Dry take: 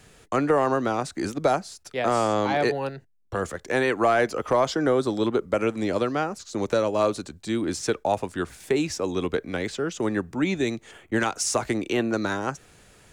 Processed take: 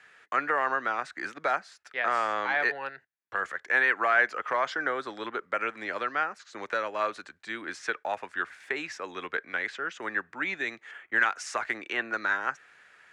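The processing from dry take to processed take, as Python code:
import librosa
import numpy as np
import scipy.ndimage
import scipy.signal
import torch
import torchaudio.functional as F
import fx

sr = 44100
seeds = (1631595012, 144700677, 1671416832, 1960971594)

y = fx.bandpass_q(x, sr, hz=1700.0, q=2.6)
y = y * librosa.db_to_amplitude(6.5)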